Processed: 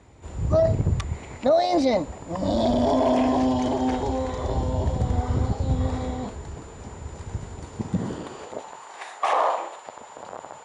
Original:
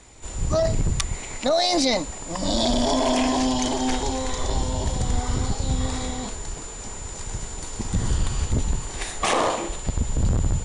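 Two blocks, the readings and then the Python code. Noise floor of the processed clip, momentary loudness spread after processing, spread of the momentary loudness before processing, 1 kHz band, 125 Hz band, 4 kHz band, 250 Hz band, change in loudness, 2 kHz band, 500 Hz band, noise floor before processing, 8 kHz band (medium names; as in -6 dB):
-44 dBFS, 18 LU, 12 LU, +1.0 dB, -0.5 dB, -11.0 dB, +0.5 dB, +0.5 dB, -5.5 dB, +2.0 dB, -36 dBFS, -15.5 dB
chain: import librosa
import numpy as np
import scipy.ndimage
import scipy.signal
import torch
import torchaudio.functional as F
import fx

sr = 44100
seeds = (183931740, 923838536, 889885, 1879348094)

y = fx.lowpass(x, sr, hz=1100.0, slope=6)
y = fx.dynamic_eq(y, sr, hz=580.0, q=1.4, threshold_db=-39.0, ratio=4.0, max_db=4)
y = fx.filter_sweep_highpass(y, sr, from_hz=76.0, to_hz=850.0, start_s=7.61, end_s=8.7, q=1.5)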